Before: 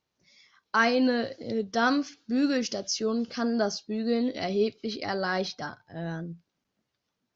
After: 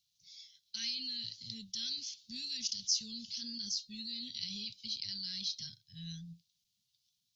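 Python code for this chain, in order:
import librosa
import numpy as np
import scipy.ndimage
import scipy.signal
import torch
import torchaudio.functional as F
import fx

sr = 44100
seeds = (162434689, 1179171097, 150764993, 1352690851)

p1 = scipy.signal.sosfilt(scipy.signal.ellip(3, 1.0, 50, [110.0, 3600.0], 'bandstop', fs=sr, output='sos'), x)
p2 = fx.low_shelf_res(p1, sr, hz=140.0, db=-13.0, q=1.5)
p3 = fx.over_compress(p2, sr, threshold_db=-50.0, ratio=-1.0)
y = p2 + (p3 * 10.0 ** (-3.0 / 20.0))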